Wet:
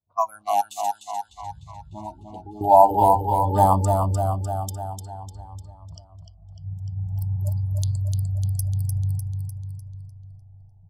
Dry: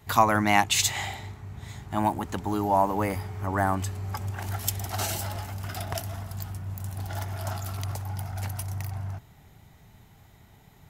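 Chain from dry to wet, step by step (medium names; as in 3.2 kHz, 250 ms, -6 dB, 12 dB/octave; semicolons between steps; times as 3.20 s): local Wiener filter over 25 samples; treble shelf 5.2 kHz +11.5 dB; de-hum 129.3 Hz, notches 39; level rider gain up to 15.5 dB; level-controlled noise filter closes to 680 Hz, open at -18.5 dBFS; spectral noise reduction 29 dB; 0.61–2.61 s: compression 2:1, threshold -43 dBFS, peak gain reduction 17.5 dB; feedback delay 300 ms, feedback 57%, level -5 dB; level-controlled noise filter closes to 2.4 kHz, open at -22.5 dBFS; FFT filter 420 Hz 0 dB, 630 Hz +10 dB, 990 Hz +11 dB, 1.8 kHz -19 dB, 3.4 kHz -2 dB; Shepard-style phaser rising 0.5 Hz; trim -6 dB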